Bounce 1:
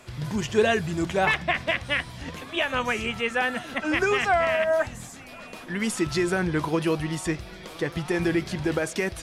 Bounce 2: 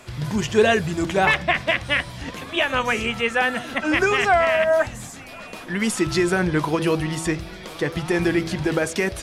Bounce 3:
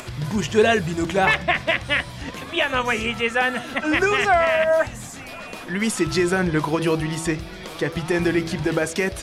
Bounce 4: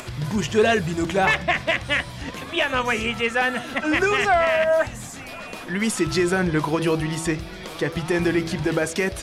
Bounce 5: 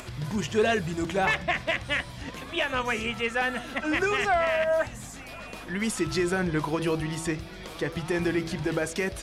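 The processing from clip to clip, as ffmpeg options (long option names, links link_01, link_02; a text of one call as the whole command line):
ffmpeg -i in.wav -af "bandreject=frequency=81.83:width_type=h:width=4,bandreject=frequency=163.66:width_type=h:width=4,bandreject=frequency=245.49:width_type=h:width=4,bandreject=frequency=327.32:width_type=h:width=4,bandreject=frequency=409.15:width_type=h:width=4,bandreject=frequency=490.98:width_type=h:width=4,bandreject=frequency=572.81:width_type=h:width=4,volume=4.5dB" out.wav
ffmpeg -i in.wav -af "acompressor=mode=upward:threshold=-30dB:ratio=2.5" out.wav
ffmpeg -i in.wav -af "asoftclip=type=tanh:threshold=-8.5dB" out.wav
ffmpeg -i in.wav -af "aeval=exprs='val(0)+0.00631*(sin(2*PI*50*n/s)+sin(2*PI*2*50*n/s)/2+sin(2*PI*3*50*n/s)/3+sin(2*PI*4*50*n/s)/4+sin(2*PI*5*50*n/s)/5)':channel_layout=same,volume=-5.5dB" out.wav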